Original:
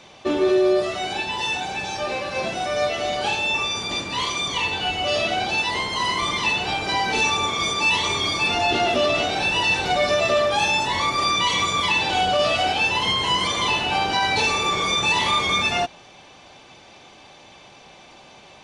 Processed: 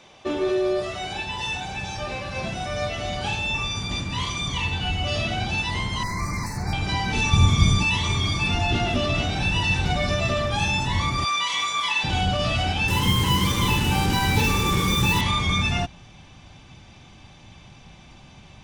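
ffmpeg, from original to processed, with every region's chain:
-filter_complex "[0:a]asettb=1/sr,asplit=3[s0][s1][s2];[s0]atrim=end=6.034[s3];[s1]atrim=start=6.03:end=6.73,asetpts=PTS-STARTPTS,afade=t=in:d=0.004:c=qsin,afade=t=out:st=0.696:d=0.004:c=qsin,volume=11.9,asoftclip=hard,volume=0.0841,asuperstop=centerf=3100:order=12:qfactor=1.7[s4];[s2]atrim=start=6.726[s5];[s3][s4]acrossfade=d=0.004:c1=hsin:c2=qsin[s6];[s6][s5]acrossfade=d=0.004:c1=qsin:c2=hsin,asettb=1/sr,asplit=3[s7][s8][s9];[s7]atrim=end=7.334[s10];[s8]atrim=start=7.33:end=7.83,asetpts=PTS-STARTPTS,afade=t=in:d=0.004:c=qsin,afade=t=out:st=0.496:d=0.004:c=qsin,bass=f=250:g=11,treble=f=4000:g=12,acrossover=split=3600[s11][s12];[s12]acompressor=threshold=0.0316:ratio=4:attack=1:release=60[s13];[s11][s13]amix=inputs=2:normalize=0[s14];[s9]atrim=start=7.826[s15];[s10][s14]acrossfade=d=0.004:c1=hsin:c2=qsin[s16];[s16][s15]acrossfade=d=0.004:c1=qsin:c2=hsin,asettb=1/sr,asplit=3[s17][s18][s19];[s17]atrim=end=11.254[s20];[s18]atrim=start=11.25:end=12.04,asetpts=PTS-STARTPTS,afade=t=in:d=0.004:c=qsin,afade=t=out:st=0.786:d=0.004:c=qsin,highpass=690,asplit=2[s21][s22];[s22]adelay=23,volume=0.501[s23];[s21][s23]amix=inputs=2:normalize=0,atrim=end_sample=34839[s24];[s19]atrim=start=12.036[s25];[s20][s24]acrossfade=d=0.004:c1=hsin:c2=qsin[s26];[s26][s25]acrossfade=d=0.004:c1=qsin:c2=hsin,asettb=1/sr,asplit=3[s27][s28][s29];[s27]atrim=end=12.884[s30];[s28]atrim=start=12.88:end=15.21,asetpts=PTS-STARTPTS,afade=t=in:d=0.004:c=qsin,afade=t=out:st=2.326:d=0.004:c=qsin,equalizer=f=360:w=0.52:g=6,acrusher=bits=3:mix=0:aa=0.5,asuperstop=centerf=680:order=4:qfactor=3.9[s31];[s29]atrim=start=15.206[s32];[s30][s31]acrossfade=d=0.004:c1=hsin:c2=qsin[s33];[s33][s32]acrossfade=d=0.004:c1=qsin:c2=hsin,bandreject=f=4300:w=15,asubboost=boost=9.5:cutoff=150,volume=0.668"

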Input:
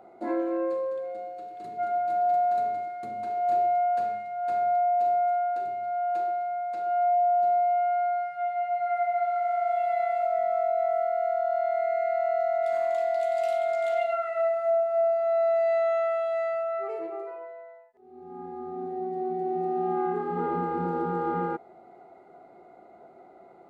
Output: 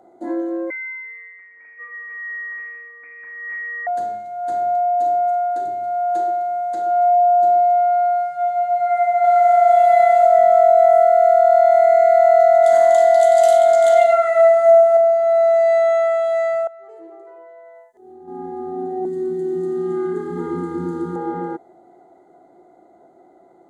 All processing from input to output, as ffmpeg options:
-filter_complex "[0:a]asettb=1/sr,asplit=3[s0][s1][s2];[s0]atrim=end=0.704[s3];[s1]atrim=start=0.7:end=3.87,asetpts=PTS-STARTPTS,afade=t=in:d=0.004:c=qsin,afade=t=out:st=3.166:d=0.004:c=qsin,bandreject=f=690:w=8,lowpass=f=2200:t=q:w=0.5098,lowpass=f=2200:t=q:w=0.6013,lowpass=f=2200:t=q:w=0.9,lowpass=f=2200:t=q:w=2.563,afreqshift=-2600[s4];[s2]atrim=start=3.866[s5];[s3][s4]acrossfade=d=0.004:c1=hsin:c2=qsin[s6];[s6][s5]acrossfade=d=0.004:c1=qsin:c2=hsin,asettb=1/sr,asplit=3[s7][s8][s9];[s7]atrim=end=9.244[s10];[s8]atrim=start=9.24:end=14.97,asetpts=PTS-STARTPTS,afade=t=in:d=0.004:c=qsin,afade=t=out:st=5.726:d=0.004:c=qsin,equalizer=f=340:w=7.1:g=-12.5,acontrast=21[s11];[s9]atrim=start=14.966[s12];[s10][s11]acrossfade=d=0.004:c1=hsin:c2=qsin[s13];[s13][s12]acrossfade=d=0.004:c1=qsin:c2=hsin,asettb=1/sr,asplit=3[s14][s15][s16];[s14]atrim=end=16.674[s17];[s15]atrim=start=16.67:end=18.28,asetpts=PTS-STARTPTS,afade=t=in:d=0.004:c=qsin,afade=t=out:st=1.606:d=0.004:c=qsin,bandreject=f=50:t=h:w=6,bandreject=f=100:t=h:w=6,bandreject=f=150:t=h:w=6,bandreject=f=200:t=h:w=6,bandreject=f=250:t=h:w=6,bandreject=f=300:t=h:w=6,bandreject=f=350:t=h:w=6,bandreject=f=400:t=h:w=6,acompressor=threshold=0.00447:ratio=8:attack=3.2:release=140:knee=1:detection=peak[s18];[s16]atrim=start=18.276[s19];[s17][s18]acrossfade=d=0.004:c1=hsin:c2=qsin[s20];[s20][s19]acrossfade=d=0.004:c1=qsin:c2=hsin,asettb=1/sr,asplit=3[s21][s22][s23];[s21]atrim=end=19.054[s24];[s22]atrim=start=19.05:end=21.16,asetpts=PTS-STARTPTS,afade=t=in:d=0.004:c=qsin,afade=t=out:st=2.106:d=0.004:c=qsin,asuperstop=centerf=650:order=4:qfactor=1.3,bass=f=250:g=5,treble=f=4000:g=8,asplit=2[s25][s26];[s26]adelay=14,volume=0.251[s27];[s25][s27]amix=inputs=2:normalize=0,atrim=end_sample=93051[s28];[s23]atrim=start=21.156[s29];[s24][s28]acrossfade=d=0.004:c1=hsin:c2=qsin[s30];[s30][s29]acrossfade=d=0.004:c1=qsin:c2=hsin,superequalizer=6b=2:10b=0.631:12b=0.282:15b=2.82:16b=2.24,dynaudnorm=f=330:g=31:m=3.16"

